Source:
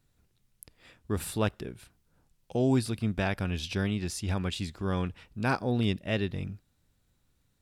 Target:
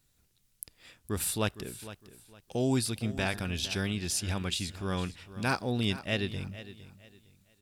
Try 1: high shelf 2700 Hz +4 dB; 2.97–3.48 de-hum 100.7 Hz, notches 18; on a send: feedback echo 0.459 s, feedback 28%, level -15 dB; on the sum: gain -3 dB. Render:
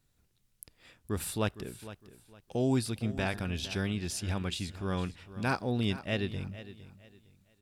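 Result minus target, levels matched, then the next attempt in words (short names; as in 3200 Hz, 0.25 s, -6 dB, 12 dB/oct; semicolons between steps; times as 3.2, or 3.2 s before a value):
4000 Hz band -3.0 dB
high shelf 2700 Hz +11 dB; 2.97–3.48 de-hum 100.7 Hz, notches 18; on a send: feedback echo 0.459 s, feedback 28%, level -15 dB; on the sum: gain -3 dB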